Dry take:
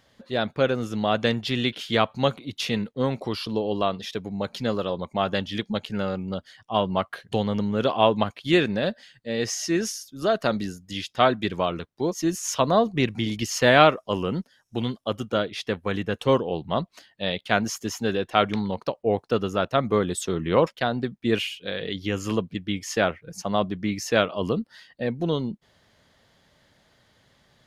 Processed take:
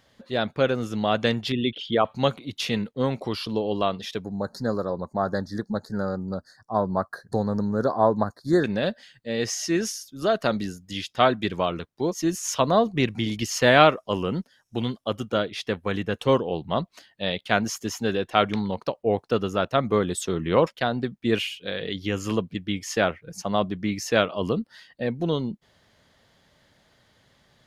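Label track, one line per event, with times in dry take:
1.520000	2.050000	formant sharpening exponent 2
4.240000	8.640000	elliptic band-stop 1700–4300 Hz, stop band 50 dB

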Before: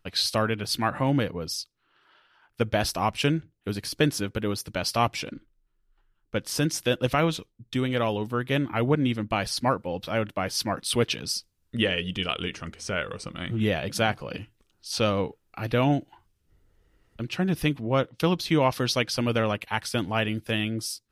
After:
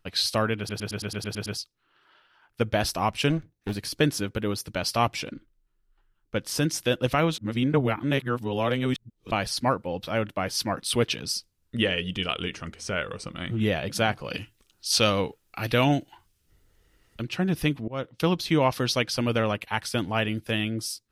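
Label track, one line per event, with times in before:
0.580000	0.580000	stutter in place 0.11 s, 9 plays
3.300000	3.750000	minimum comb delay 0.49 ms
7.380000	9.310000	reverse
14.240000	17.220000	high shelf 2000 Hz +9.5 dB
17.880000	18.320000	fade in equal-power, from -22.5 dB

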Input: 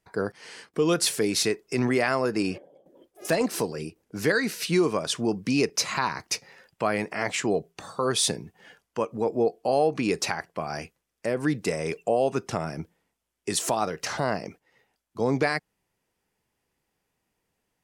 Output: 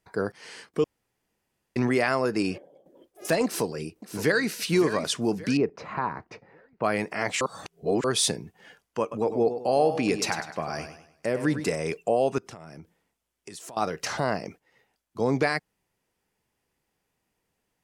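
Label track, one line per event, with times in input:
0.840000	1.760000	room tone
3.450000	4.520000	echo throw 0.57 s, feedback 40%, level -11 dB
5.570000	6.840000	LPF 1200 Hz
7.410000	8.040000	reverse
9.010000	11.750000	warbling echo 0.101 s, feedback 39%, depth 83 cents, level -10 dB
12.380000	13.770000	compressor, threshold -40 dBFS

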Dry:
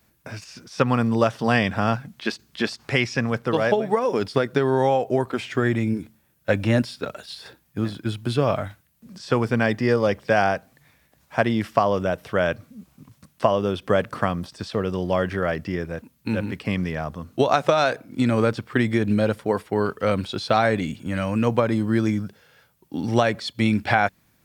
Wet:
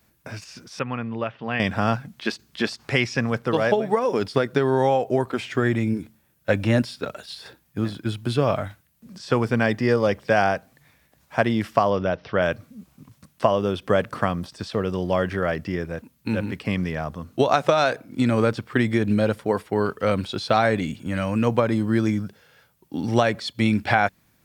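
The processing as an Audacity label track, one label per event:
0.790000	1.600000	ladder low-pass 3100 Hz, resonance 45%
11.900000	12.420000	steep low-pass 5700 Hz 72 dB/oct

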